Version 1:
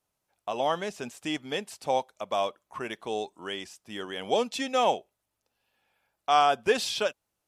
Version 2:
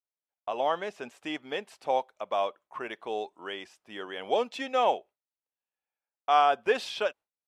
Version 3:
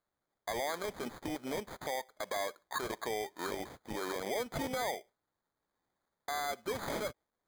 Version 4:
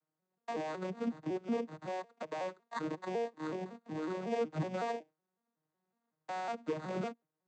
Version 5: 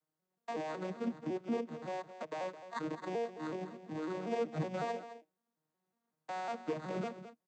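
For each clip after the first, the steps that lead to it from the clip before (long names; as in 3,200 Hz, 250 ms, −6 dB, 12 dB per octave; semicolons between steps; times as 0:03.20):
noise gate with hold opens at −52 dBFS; bass and treble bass −12 dB, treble −13 dB
downward compressor 8 to 1, threshold −36 dBFS, peak gain reduction 18 dB; brickwall limiter −34.5 dBFS, peak gain reduction 11.5 dB; decimation without filtering 16×; level +8 dB
vocoder with an arpeggio as carrier minor triad, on D#3, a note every 185 ms; level +1 dB
single-tap delay 214 ms −12.5 dB; level −1 dB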